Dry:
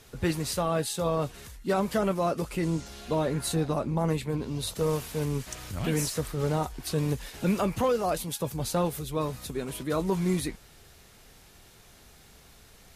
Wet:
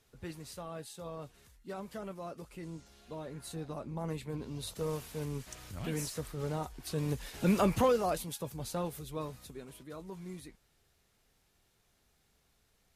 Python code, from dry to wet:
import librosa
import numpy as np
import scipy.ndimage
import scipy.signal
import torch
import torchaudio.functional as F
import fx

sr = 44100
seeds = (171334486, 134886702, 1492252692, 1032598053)

y = fx.gain(x, sr, db=fx.line((3.25, -16.0), (4.4, -8.5), (6.79, -8.5), (7.72, 0.5), (8.47, -9.0), (9.18, -9.0), (9.99, -18.0)))